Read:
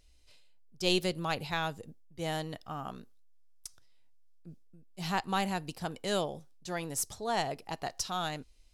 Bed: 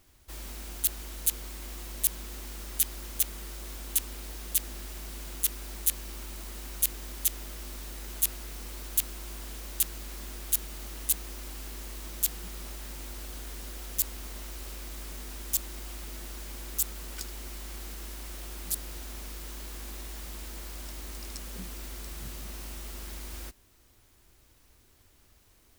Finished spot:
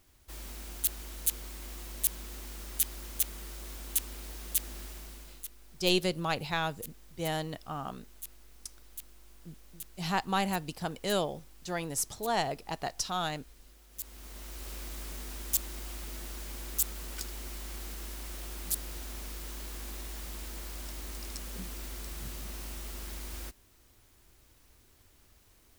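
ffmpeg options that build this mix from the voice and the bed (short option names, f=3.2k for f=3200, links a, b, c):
-filter_complex "[0:a]adelay=5000,volume=1.5dB[a];[1:a]volume=14.5dB,afade=t=out:st=4.83:d=0.66:silence=0.177828,afade=t=in:st=13.9:d=0.87:silence=0.141254[b];[a][b]amix=inputs=2:normalize=0"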